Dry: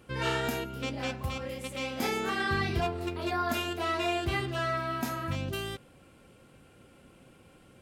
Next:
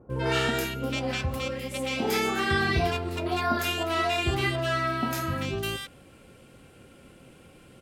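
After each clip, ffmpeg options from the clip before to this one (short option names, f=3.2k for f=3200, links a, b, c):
-filter_complex "[0:a]bandreject=f=50:t=h:w=6,bandreject=f=100:t=h:w=6,bandreject=f=150:t=h:w=6,bandreject=f=200:t=h:w=6,bandreject=f=250:t=h:w=6,bandreject=f=300:t=h:w=6,bandreject=f=350:t=h:w=6,acrossover=split=1000[a][b];[b]adelay=100[c];[a][c]amix=inputs=2:normalize=0,volume=5.5dB"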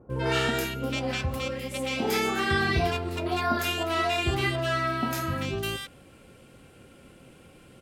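-af anull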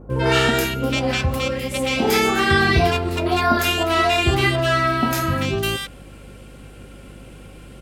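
-af "aeval=exprs='val(0)+0.00316*(sin(2*PI*50*n/s)+sin(2*PI*2*50*n/s)/2+sin(2*PI*3*50*n/s)/3+sin(2*PI*4*50*n/s)/4+sin(2*PI*5*50*n/s)/5)':c=same,volume=8.5dB"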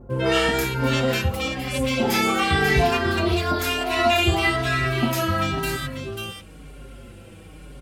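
-filter_complex "[0:a]aecho=1:1:542:0.422,asplit=2[a][b];[b]adelay=5.3,afreqshift=-1[c];[a][c]amix=inputs=2:normalize=1"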